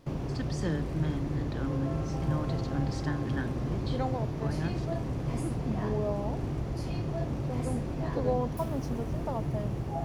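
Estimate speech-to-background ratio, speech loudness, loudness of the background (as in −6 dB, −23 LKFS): −3.5 dB, −36.5 LKFS, −33.0 LKFS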